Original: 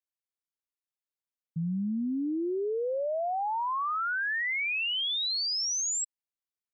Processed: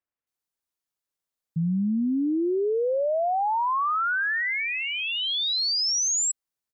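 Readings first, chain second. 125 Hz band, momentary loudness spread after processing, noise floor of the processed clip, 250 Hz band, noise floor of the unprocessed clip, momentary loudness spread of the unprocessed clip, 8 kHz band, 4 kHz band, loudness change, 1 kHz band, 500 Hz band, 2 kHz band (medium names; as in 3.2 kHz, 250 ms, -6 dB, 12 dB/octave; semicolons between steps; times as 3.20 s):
+6.0 dB, 5 LU, under -85 dBFS, +6.0 dB, under -85 dBFS, 5 LU, no reading, +4.5 dB, +5.0 dB, +6.0 dB, +6.0 dB, +4.0 dB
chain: bands offset in time lows, highs 270 ms, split 2.6 kHz; trim +6 dB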